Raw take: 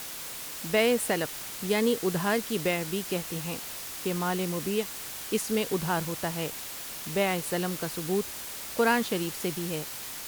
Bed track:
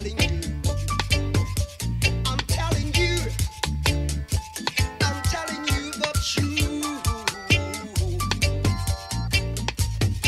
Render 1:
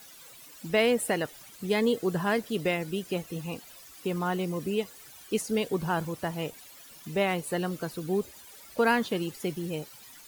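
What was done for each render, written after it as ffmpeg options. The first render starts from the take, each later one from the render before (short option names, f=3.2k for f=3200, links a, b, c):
-af "afftdn=nr=15:nf=-39"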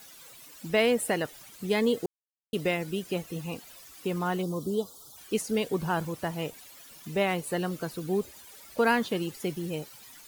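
-filter_complex "[0:a]asplit=3[a][b][c];[a]afade=t=out:st=4.41:d=0.02[d];[b]asuperstop=centerf=2100:order=12:qfactor=1.1,afade=t=in:st=4.41:d=0.02,afade=t=out:st=5.16:d=0.02[e];[c]afade=t=in:st=5.16:d=0.02[f];[d][e][f]amix=inputs=3:normalize=0,asplit=3[g][h][i];[g]atrim=end=2.06,asetpts=PTS-STARTPTS,afade=t=out:st=2.056:d=0.004:c=hsin[j];[h]atrim=start=2.06:end=2.53,asetpts=PTS-STARTPTS,volume=0[k];[i]atrim=start=2.53,asetpts=PTS-STARTPTS,afade=t=in:d=0.004:c=hsin[l];[j][k][l]concat=n=3:v=0:a=1"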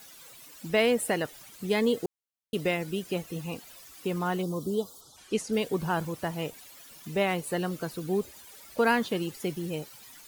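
-filter_complex "[0:a]asplit=3[a][b][c];[a]afade=t=out:st=5:d=0.02[d];[b]lowpass=8.3k,afade=t=in:st=5:d=0.02,afade=t=out:st=5.51:d=0.02[e];[c]afade=t=in:st=5.51:d=0.02[f];[d][e][f]amix=inputs=3:normalize=0"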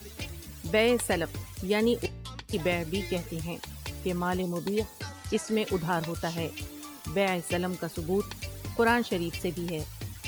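-filter_complex "[1:a]volume=-16.5dB[a];[0:a][a]amix=inputs=2:normalize=0"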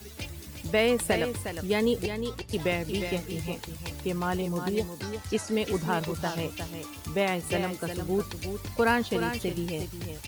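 -af "aecho=1:1:358:0.398"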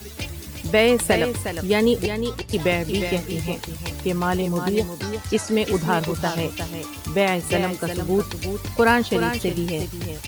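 -af "volume=7dB"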